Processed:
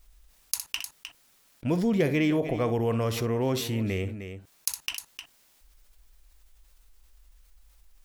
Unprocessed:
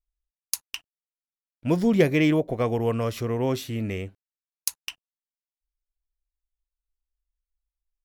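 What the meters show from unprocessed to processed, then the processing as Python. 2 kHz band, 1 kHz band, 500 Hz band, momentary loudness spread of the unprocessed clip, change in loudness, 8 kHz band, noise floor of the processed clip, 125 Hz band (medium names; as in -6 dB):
-2.5 dB, -2.0 dB, -2.5 dB, 18 LU, -3.0 dB, 0.0 dB, -63 dBFS, -1.5 dB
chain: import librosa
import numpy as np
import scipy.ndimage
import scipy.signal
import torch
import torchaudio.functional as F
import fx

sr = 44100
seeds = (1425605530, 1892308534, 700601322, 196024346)

p1 = x + fx.echo_multitap(x, sr, ms=(62, 307), db=(-16.0, -19.0), dry=0)
p2 = fx.env_flatten(p1, sr, amount_pct=50)
y = F.gain(torch.from_numpy(p2), -6.5).numpy()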